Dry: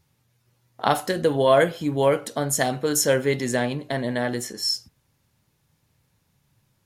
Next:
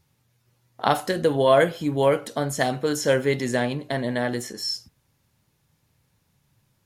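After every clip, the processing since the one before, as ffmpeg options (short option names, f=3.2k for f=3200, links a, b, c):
-filter_complex "[0:a]acrossover=split=5000[a][b];[b]acompressor=threshold=-33dB:ratio=4:attack=1:release=60[c];[a][c]amix=inputs=2:normalize=0"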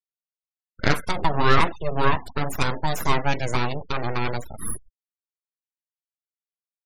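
-af "aeval=exprs='abs(val(0))':c=same,afftfilt=real='re*gte(hypot(re,im),0.0158)':imag='im*gte(hypot(re,im),0.0158)':win_size=1024:overlap=0.75,volume=2.5dB"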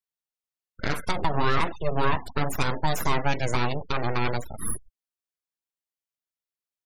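-af "alimiter=limit=-11dB:level=0:latency=1:release=118"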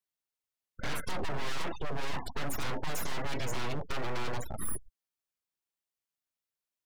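-af "asoftclip=type=hard:threshold=-26.5dB"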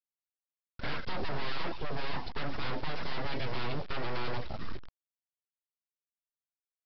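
-af "aecho=1:1:115|230|345:0.0841|0.0362|0.0156,aresample=11025,acrusher=bits=5:dc=4:mix=0:aa=0.000001,aresample=44100"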